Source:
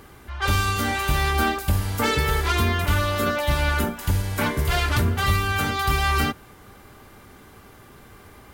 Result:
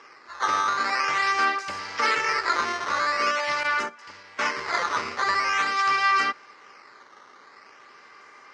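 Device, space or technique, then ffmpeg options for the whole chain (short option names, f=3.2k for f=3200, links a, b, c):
circuit-bent sampling toy: -filter_complex "[0:a]acrusher=samples=10:mix=1:aa=0.000001:lfo=1:lforange=16:lforate=0.45,highpass=600,equalizer=f=710:t=q:w=4:g=-6,equalizer=f=1.2k:t=q:w=4:g=5,equalizer=f=2k:t=q:w=4:g=6,equalizer=f=3.5k:t=q:w=4:g=-8,equalizer=f=5.1k:t=q:w=4:g=6,lowpass=f=5.6k:w=0.5412,lowpass=f=5.6k:w=1.3066,asettb=1/sr,asplit=3[a][b][c];[a]atrim=end=3.634[d];[b]atrim=start=3.63:end=4.54,asetpts=PTS-STARTPTS,afade=t=in:d=0.004:c=qsin,afade=t=out:st=0.906:d=0.004:c=qsin,agate=range=-11dB:threshold=-28dB:ratio=16:detection=peak[e];[c]atrim=start=4.536[f];[d][e]acrossfade=d=0.004:c1=hsin:c2=qsin[g];[g][f]acrossfade=d=0.004:c1=qsin:c2=hsin"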